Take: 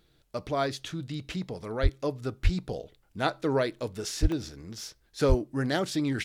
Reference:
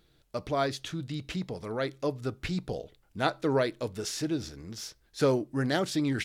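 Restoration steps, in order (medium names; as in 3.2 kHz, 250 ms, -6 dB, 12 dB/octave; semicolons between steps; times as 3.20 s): de-plosive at 1.82/2.43/4.21/5.28 s; interpolate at 3.79/4.32 s, 1 ms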